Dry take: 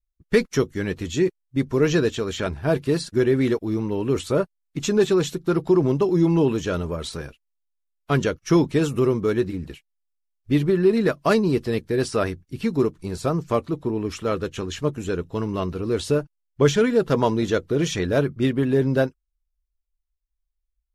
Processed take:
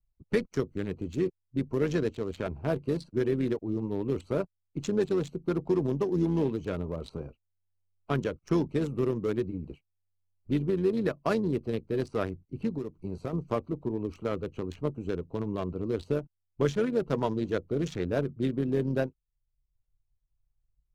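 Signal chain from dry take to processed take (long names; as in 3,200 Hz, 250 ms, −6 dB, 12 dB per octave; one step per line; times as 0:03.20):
adaptive Wiener filter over 25 samples
0:12.77–0:13.33: downward compressor 5 to 1, threshold −27 dBFS, peak gain reduction 11 dB
amplitude modulation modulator 96 Hz, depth 25%
multiband upward and downward compressor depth 40%
level −6 dB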